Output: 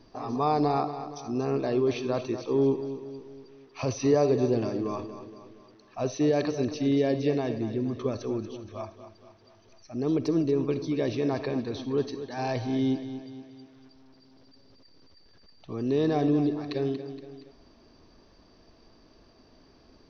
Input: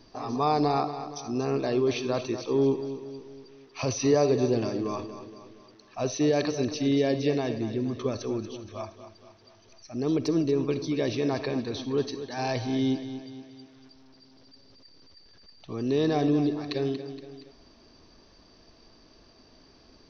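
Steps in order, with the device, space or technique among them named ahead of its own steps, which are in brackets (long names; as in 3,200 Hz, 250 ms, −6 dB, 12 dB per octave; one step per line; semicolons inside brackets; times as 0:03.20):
behind a face mask (high-shelf EQ 2,500 Hz −7 dB)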